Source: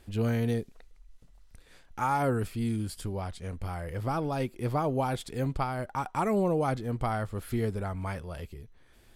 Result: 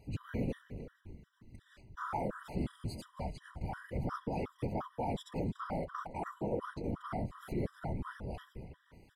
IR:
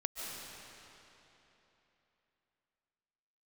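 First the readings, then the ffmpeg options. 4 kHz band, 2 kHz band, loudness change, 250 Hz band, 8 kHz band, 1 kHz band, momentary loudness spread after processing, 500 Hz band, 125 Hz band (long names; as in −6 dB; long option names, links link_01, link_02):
−9.0 dB, −8.5 dB, −8.5 dB, −7.5 dB, −13.5 dB, −9.0 dB, 16 LU, −9.0 dB, −9.0 dB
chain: -filter_complex "[0:a]asplit=2[link_01][link_02];[link_02]asplit=5[link_03][link_04][link_05][link_06][link_07];[link_03]adelay=281,afreqshift=-91,volume=-19dB[link_08];[link_04]adelay=562,afreqshift=-182,volume=-23.6dB[link_09];[link_05]adelay=843,afreqshift=-273,volume=-28.2dB[link_10];[link_06]adelay=1124,afreqshift=-364,volume=-32.7dB[link_11];[link_07]adelay=1405,afreqshift=-455,volume=-37.3dB[link_12];[link_08][link_09][link_10][link_11][link_12]amix=inputs=5:normalize=0[link_13];[link_01][link_13]amix=inputs=2:normalize=0,alimiter=level_in=1dB:limit=-24dB:level=0:latency=1:release=160,volume=-1dB,afftfilt=real='hypot(re,im)*cos(2*PI*random(0))':imag='hypot(re,im)*sin(2*PI*random(1))':win_size=512:overlap=0.75,equalizer=frequency=12000:width=0.4:gain=-9,asplit=2[link_14][link_15];[link_15]adelay=320.7,volume=-14dB,highshelf=frequency=4000:gain=-7.22[link_16];[link_14][link_16]amix=inputs=2:normalize=0,afftfilt=real='re*gt(sin(2*PI*2.8*pts/sr)*(1-2*mod(floor(b*sr/1024/990),2)),0)':imag='im*gt(sin(2*PI*2.8*pts/sr)*(1-2*mod(floor(b*sr/1024/990),2)),0)':win_size=1024:overlap=0.75,volume=5dB"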